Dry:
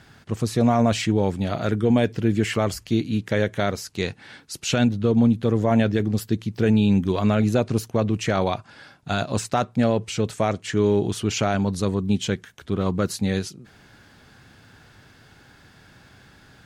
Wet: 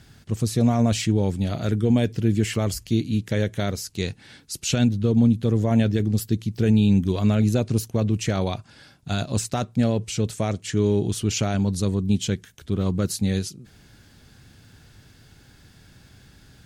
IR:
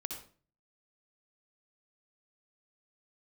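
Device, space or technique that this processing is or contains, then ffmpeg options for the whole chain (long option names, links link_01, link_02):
smiley-face EQ: -af "lowshelf=frequency=80:gain=8,equalizer=frequency=1100:width_type=o:width=2.5:gain=-7.5,highshelf=frequency=5300:gain=5"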